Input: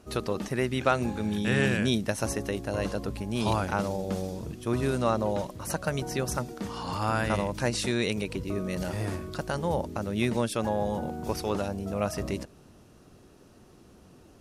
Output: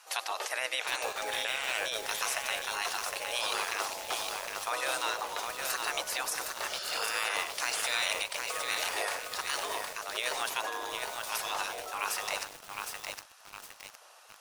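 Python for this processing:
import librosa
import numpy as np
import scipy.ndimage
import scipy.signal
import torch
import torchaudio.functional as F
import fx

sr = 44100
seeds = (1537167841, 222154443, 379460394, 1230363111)

y = fx.spec_gate(x, sr, threshold_db=-15, keep='weak')
y = scipy.signal.sosfilt(scipy.signal.butter(4, 470.0, 'highpass', fs=sr, output='sos'), y)
y = fx.over_compress(y, sr, threshold_db=-39.0, ratio=-1.0)
y = y + 10.0 ** (-17.0 / 20.0) * np.pad(y, (int(97 * sr / 1000.0), 0))[:len(y)]
y = fx.echo_crushed(y, sr, ms=761, feedback_pct=55, bits=8, wet_db=-3)
y = y * 10.0 ** (7.0 / 20.0)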